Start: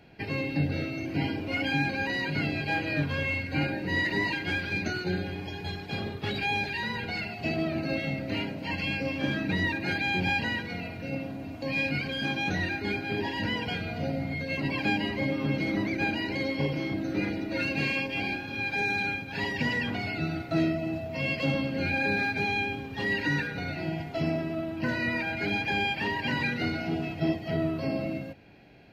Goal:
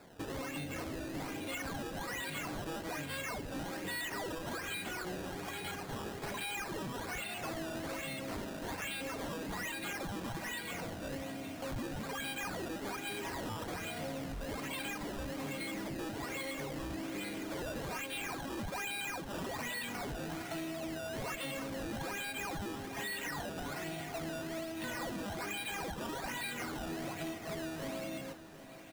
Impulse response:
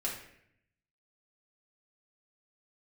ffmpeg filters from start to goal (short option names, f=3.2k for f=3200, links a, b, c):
-af "aemphasis=mode=production:type=bsi,acompressor=threshold=-34dB:ratio=6,aresample=16000,asoftclip=type=tanh:threshold=-35dB,aresample=44100,acrusher=samples=14:mix=1:aa=0.000001:lfo=1:lforange=14:lforate=1.2,aecho=1:1:760|1520|2280|3040|3800|4560:0.178|0.101|0.0578|0.0329|0.0188|0.0107"